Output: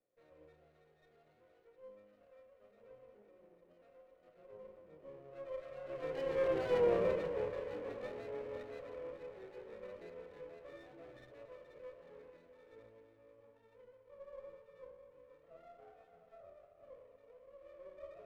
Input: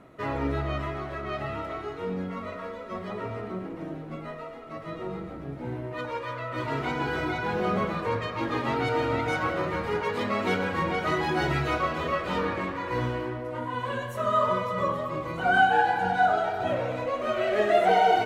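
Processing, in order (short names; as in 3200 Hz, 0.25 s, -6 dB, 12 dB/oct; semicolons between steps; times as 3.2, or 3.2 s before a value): Doppler pass-by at 6.74, 35 m/s, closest 10 m; dynamic EQ 440 Hz, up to +3 dB, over -56 dBFS, Q 0.99; vocal tract filter e; on a send: split-band echo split 500 Hz, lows 0.226 s, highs 0.481 s, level -12 dB; on the sum: running maximum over 9 samples; gain +5.5 dB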